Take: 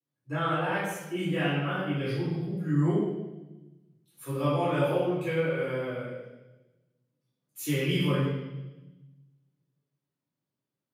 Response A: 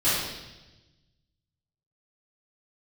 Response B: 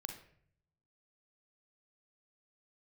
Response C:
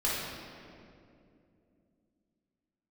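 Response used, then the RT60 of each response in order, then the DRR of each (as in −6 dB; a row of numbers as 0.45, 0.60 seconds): A; 1.1, 0.60, 2.6 seconds; −14.0, 4.5, −7.5 decibels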